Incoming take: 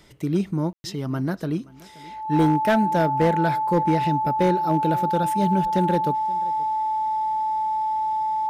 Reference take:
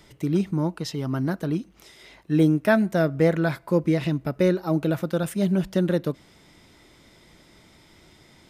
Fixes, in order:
clipped peaks rebuilt −12.5 dBFS
notch filter 870 Hz, Q 30
ambience match 0:00.73–0:00.84
echo removal 526 ms −22 dB

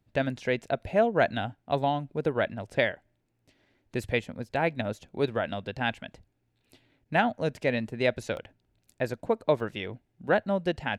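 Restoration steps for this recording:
repair the gap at 0:06.61/0:08.37/0:09.60, 1.2 ms

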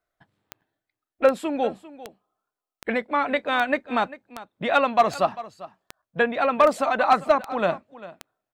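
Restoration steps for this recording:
clipped peaks rebuilt −8.5 dBFS
click removal
repair the gap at 0:00.61/0:06.02, 6.3 ms
echo removal 397 ms −17 dB

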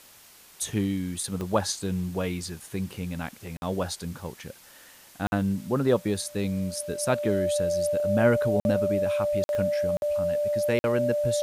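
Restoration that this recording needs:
click removal
notch filter 590 Hz, Q 30
repair the gap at 0:03.57/0:05.27/0:08.60/0:09.44/0:09.97/0:10.79, 51 ms
broadband denoise 21 dB, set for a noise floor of −52 dBFS

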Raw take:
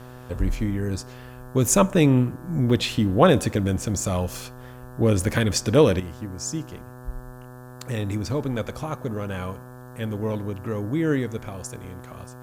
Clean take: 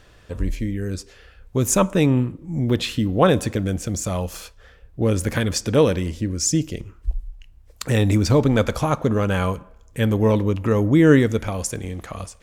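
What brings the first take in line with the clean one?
hum removal 125.3 Hz, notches 14
downward expander −33 dBFS, range −21 dB
level correction +9.5 dB, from 0:06.00

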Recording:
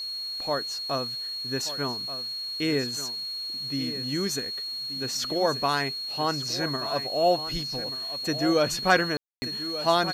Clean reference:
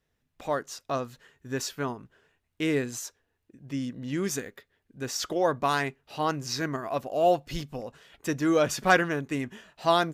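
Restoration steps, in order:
notch filter 4,300 Hz, Q 30
ambience match 0:09.17–0:09.42
noise reduction from a noise print 30 dB
echo removal 1,182 ms −12.5 dB

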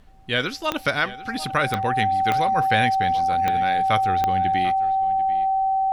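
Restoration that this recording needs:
click removal
notch filter 770 Hz, Q 30
downward expander −26 dBFS, range −21 dB
echo removal 743 ms −17 dB

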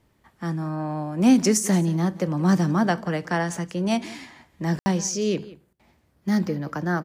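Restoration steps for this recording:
ambience match 0:04.79–0:04.86
echo removal 177 ms −19 dB

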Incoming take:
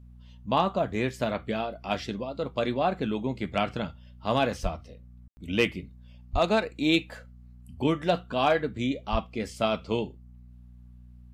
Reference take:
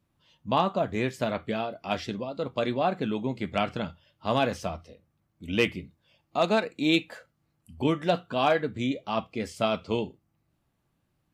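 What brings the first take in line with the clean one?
hum removal 60.7 Hz, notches 4
0:04.62–0:04.74: high-pass filter 140 Hz 24 dB per octave
0:06.32–0:06.44: high-pass filter 140 Hz 24 dB per octave
0:09.11–0:09.23: high-pass filter 140 Hz 24 dB per octave
ambience match 0:05.28–0:05.37

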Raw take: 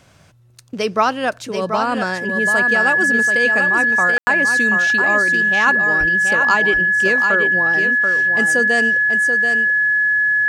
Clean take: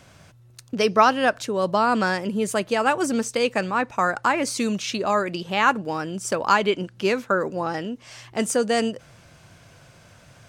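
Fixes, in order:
notch filter 1,700 Hz, Q 30
0:05.99–0:06.11: high-pass filter 140 Hz 24 dB per octave
ambience match 0:04.18–0:04.27
echo removal 733 ms −6.5 dB

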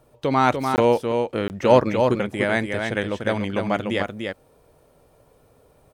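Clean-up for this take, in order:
repair the gap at 0:00.76/0:01.48, 19 ms
echo removal 295 ms −5 dB

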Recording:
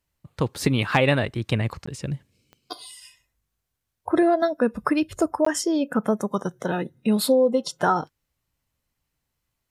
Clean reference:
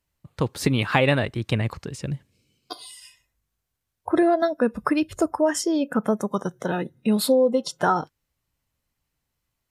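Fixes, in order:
clipped peaks rebuilt −6.5 dBFS
click removal
repair the gap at 0:01.86/0:05.45, 14 ms

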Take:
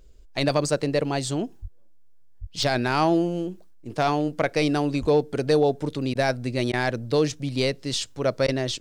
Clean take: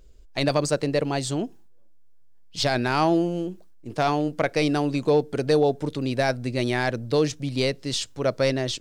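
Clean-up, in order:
0:01.61–0:01.73: high-pass filter 140 Hz 24 dB per octave
0:02.40–0:02.52: high-pass filter 140 Hz 24 dB per octave
0:05.00–0:05.12: high-pass filter 140 Hz 24 dB per octave
repair the gap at 0:02.63, 1.1 ms
repair the gap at 0:06.14/0:06.72/0:08.47, 11 ms

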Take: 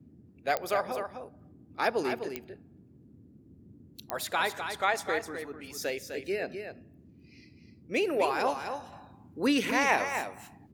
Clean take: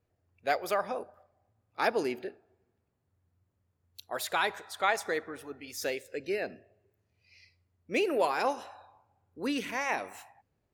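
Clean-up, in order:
click removal
noise reduction from a noise print 21 dB
echo removal 254 ms −7.5 dB
level correction −6 dB, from 0:08.67

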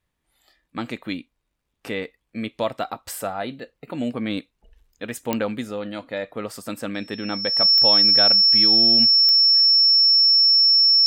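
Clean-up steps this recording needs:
click removal
notch filter 5,400 Hz, Q 30

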